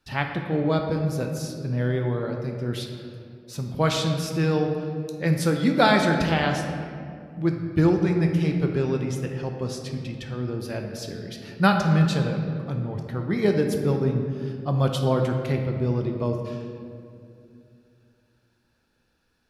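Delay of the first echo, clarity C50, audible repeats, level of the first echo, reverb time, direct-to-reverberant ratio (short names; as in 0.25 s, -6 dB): none, 4.5 dB, none, none, 2.5 s, 3.0 dB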